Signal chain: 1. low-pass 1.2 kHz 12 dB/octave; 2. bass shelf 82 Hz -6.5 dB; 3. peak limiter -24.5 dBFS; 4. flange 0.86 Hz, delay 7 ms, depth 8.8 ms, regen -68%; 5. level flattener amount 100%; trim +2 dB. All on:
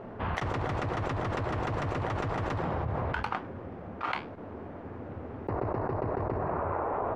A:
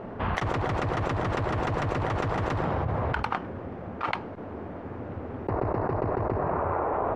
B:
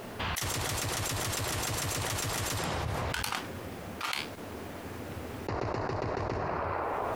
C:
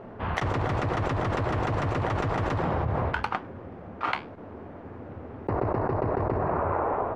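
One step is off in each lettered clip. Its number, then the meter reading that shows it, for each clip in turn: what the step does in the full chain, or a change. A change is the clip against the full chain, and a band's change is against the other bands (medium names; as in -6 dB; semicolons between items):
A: 4, loudness change +3.5 LU; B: 1, 4 kHz band +14.5 dB; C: 3, momentary loudness spread change +4 LU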